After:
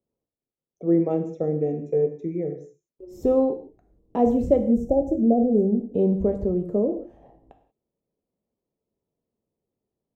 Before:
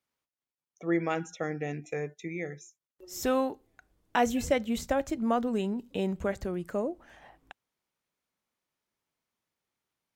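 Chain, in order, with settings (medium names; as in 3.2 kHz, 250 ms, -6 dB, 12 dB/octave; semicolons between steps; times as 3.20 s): band-stop 1.5 kHz, Q 7.9; time-frequency box 4.57–5.95 s, 870–5300 Hz -26 dB; FFT filter 270 Hz 0 dB, 460 Hz +3 dB, 1.6 kHz -27 dB; gated-style reverb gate 210 ms falling, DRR 5.5 dB; trim +8 dB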